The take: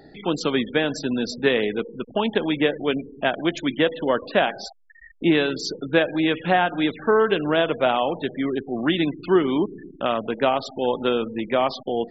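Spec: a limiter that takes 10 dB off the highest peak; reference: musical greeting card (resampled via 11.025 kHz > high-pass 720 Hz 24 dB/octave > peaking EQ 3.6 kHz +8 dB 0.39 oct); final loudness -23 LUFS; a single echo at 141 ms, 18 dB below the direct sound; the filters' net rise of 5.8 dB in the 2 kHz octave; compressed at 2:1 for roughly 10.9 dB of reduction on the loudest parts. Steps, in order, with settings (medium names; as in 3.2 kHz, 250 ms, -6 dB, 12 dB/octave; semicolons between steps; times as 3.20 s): peaking EQ 2 kHz +7 dB; compression 2:1, threshold -33 dBFS; peak limiter -23 dBFS; delay 141 ms -18 dB; resampled via 11.025 kHz; high-pass 720 Hz 24 dB/octave; peaking EQ 3.6 kHz +8 dB 0.39 oct; trim +14 dB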